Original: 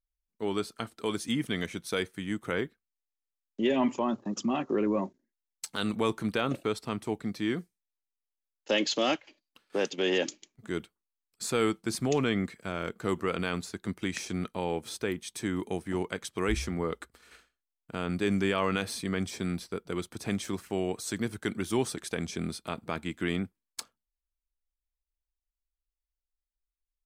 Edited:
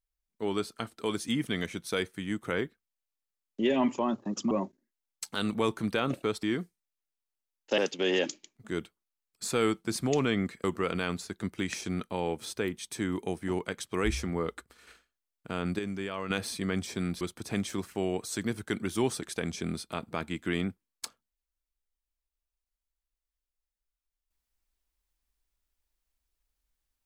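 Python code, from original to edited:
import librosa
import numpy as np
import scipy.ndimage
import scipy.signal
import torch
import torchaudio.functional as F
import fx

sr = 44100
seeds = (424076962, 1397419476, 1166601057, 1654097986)

y = fx.edit(x, sr, fx.cut(start_s=4.51, length_s=0.41),
    fx.cut(start_s=6.84, length_s=0.57),
    fx.cut(start_s=8.76, length_s=1.01),
    fx.cut(start_s=12.63, length_s=0.45),
    fx.clip_gain(start_s=18.23, length_s=0.51, db=-8.0),
    fx.cut(start_s=19.65, length_s=0.31), tone=tone)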